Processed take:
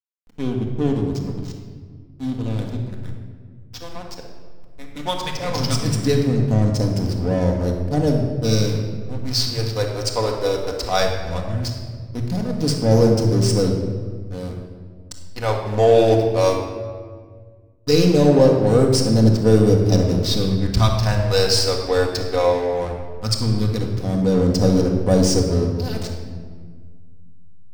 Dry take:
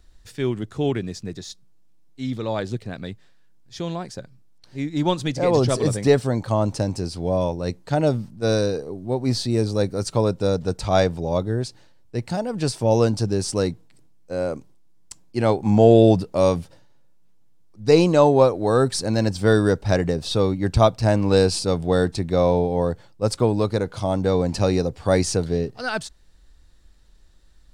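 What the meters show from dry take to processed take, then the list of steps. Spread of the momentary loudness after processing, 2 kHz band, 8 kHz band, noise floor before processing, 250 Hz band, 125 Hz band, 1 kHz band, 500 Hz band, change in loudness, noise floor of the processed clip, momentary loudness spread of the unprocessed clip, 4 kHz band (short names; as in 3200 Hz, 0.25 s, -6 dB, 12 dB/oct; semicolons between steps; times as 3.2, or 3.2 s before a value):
16 LU, -0.5 dB, +3.5 dB, -51 dBFS, +2.0 dB, +4.0 dB, -0.5 dB, +0.5 dB, +2.0 dB, -41 dBFS, 14 LU, +6.0 dB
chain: bell 5200 Hz +9 dB 0.46 oct; phaser stages 2, 0.17 Hz, lowest notch 170–2200 Hz; backlash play -24 dBFS; shoebox room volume 2100 m³, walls mixed, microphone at 1.9 m; gain +1 dB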